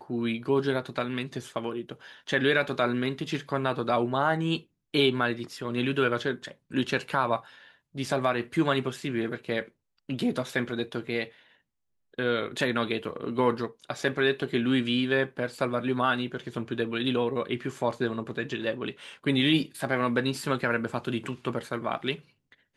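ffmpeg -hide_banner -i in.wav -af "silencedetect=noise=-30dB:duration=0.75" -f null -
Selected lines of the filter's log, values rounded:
silence_start: 11.24
silence_end: 12.19 | silence_duration: 0.95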